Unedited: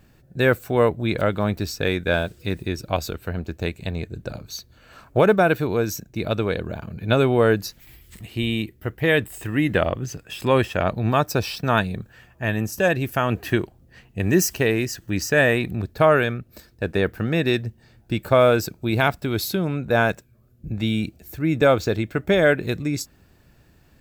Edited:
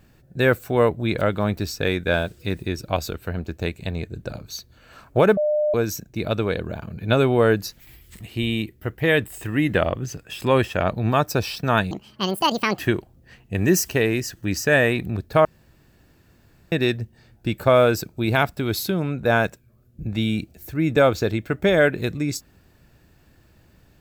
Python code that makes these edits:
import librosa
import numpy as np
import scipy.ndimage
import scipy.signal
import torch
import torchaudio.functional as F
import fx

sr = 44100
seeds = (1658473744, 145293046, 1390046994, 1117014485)

y = fx.edit(x, sr, fx.bleep(start_s=5.37, length_s=0.37, hz=602.0, db=-17.5),
    fx.speed_span(start_s=11.91, length_s=1.53, speed=1.74),
    fx.room_tone_fill(start_s=16.1, length_s=1.27), tone=tone)